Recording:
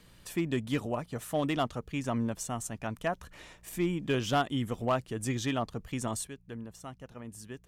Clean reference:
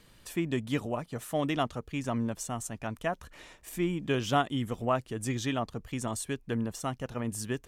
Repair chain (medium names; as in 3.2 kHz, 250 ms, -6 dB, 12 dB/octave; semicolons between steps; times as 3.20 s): clip repair -20.5 dBFS; de-hum 59.2 Hz, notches 3; gain correction +10.5 dB, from 6.27 s